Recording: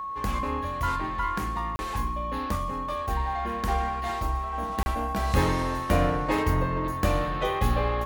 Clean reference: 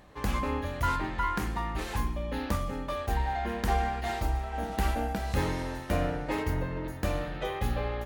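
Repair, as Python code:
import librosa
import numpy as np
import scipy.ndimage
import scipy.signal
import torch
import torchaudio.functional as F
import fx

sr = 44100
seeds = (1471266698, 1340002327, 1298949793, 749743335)

y = fx.fix_declick_ar(x, sr, threshold=6.5)
y = fx.notch(y, sr, hz=1100.0, q=30.0)
y = fx.fix_interpolate(y, sr, at_s=(1.76, 4.83), length_ms=30.0)
y = fx.gain(y, sr, db=fx.steps((0.0, 0.0), (5.16, -5.5)))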